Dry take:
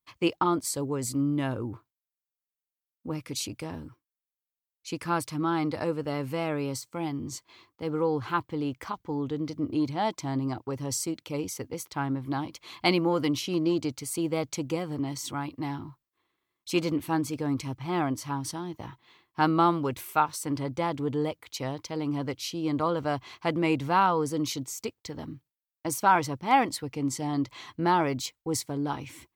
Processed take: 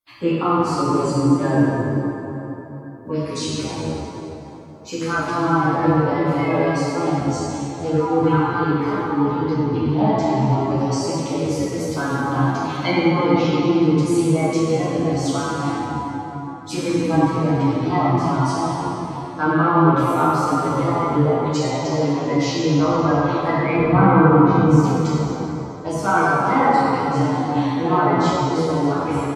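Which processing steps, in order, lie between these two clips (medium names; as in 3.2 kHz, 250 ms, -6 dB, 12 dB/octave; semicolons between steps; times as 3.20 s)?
coarse spectral quantiser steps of 30 dB; in parallel at +1 dB: peak limiter -20.5 dBFS, peak gain reduction 11.5 dB; 23.79–24.71 s: on the sum: tilt EQ -3 dB/octave; low-pass that closes with the level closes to 2.1 kHz, closed at -18 dBFS; plate-style reverb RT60 3.8 s, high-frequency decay 0.55×, DRR -9 dB; endless flanger 10.7 ms -2.5 Hz; trim -1 dB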